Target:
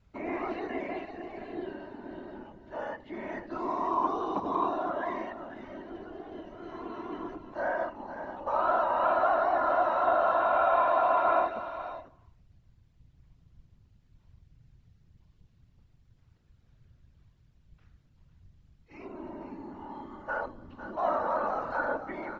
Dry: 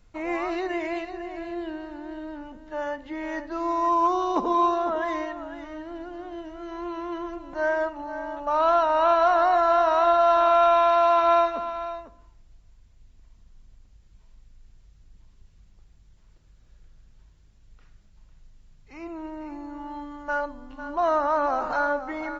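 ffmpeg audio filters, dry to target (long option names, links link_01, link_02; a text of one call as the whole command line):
ffmpeg -i in.wav -filter_complex "[0:a]lowpass=4800,afftfilt=real='hypot(re,im)*cos(2*PI*random(0))':imag='hypot(re,im)*sin(2*PI*random(1))':win_size=512:overlap=0.75,acrossover=split=2700[link_01][link_02];[link_02]acompressor=threshold=-58dB:ratio=4:attack=1:release=60[link_03];[link_01][link_03]amix=inputs=2:normalize=0" out.wav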